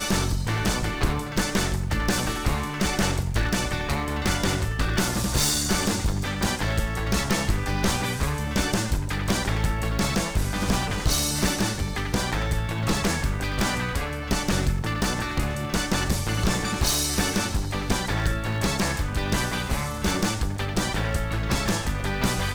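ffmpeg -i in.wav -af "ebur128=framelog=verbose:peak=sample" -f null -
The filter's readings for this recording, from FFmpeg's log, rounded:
Integrated loudness:
  I:         -25.3 LUFS
  Threshold: -35.3 LUFS
Loudness range:
  LRA:         1.6 LU
  Threshold: -45.3 LUFS
  LRA low:   -26.0 LUFS
  LRA high:  -24.5 LUFS
Sample peak:
  Peak:       -9.2 dBFS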